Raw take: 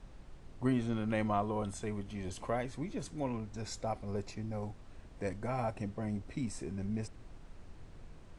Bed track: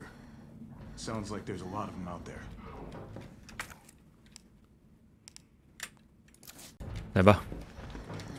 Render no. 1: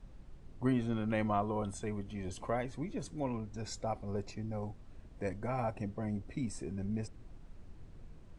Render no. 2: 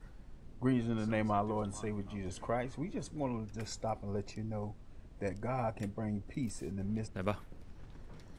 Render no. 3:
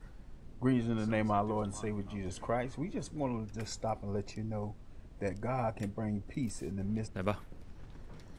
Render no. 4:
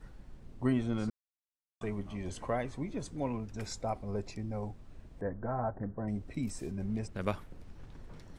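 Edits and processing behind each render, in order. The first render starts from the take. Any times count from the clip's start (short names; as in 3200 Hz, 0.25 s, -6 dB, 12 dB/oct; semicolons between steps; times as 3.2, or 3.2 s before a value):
denoiser 6 dB, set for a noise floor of -54 dBFS
add bed track -14.5 dB
gain +1.5 dB
1.1–1.81 mute; 5.21–6.08 elliptic low-pass 1700 Hz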